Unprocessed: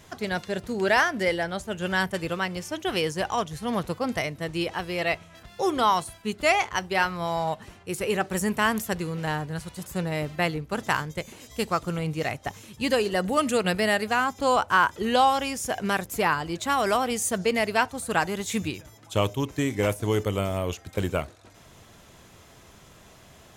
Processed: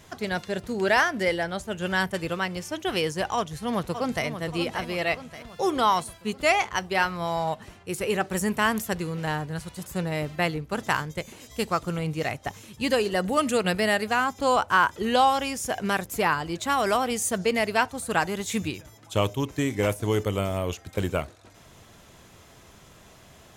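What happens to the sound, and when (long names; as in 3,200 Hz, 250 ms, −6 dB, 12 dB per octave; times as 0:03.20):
0:03.36–0:04.26: delay throw 580 ms, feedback 55%, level −9.5 dB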